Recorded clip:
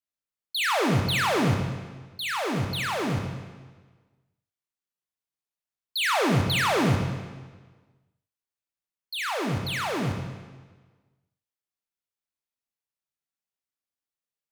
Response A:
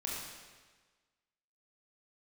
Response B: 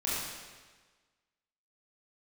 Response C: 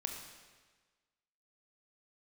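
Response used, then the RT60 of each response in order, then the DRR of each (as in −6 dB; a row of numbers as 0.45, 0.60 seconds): C; 1.4, 1.4, 1.4 seconds; −4.5, −8.5, 3.0 decibels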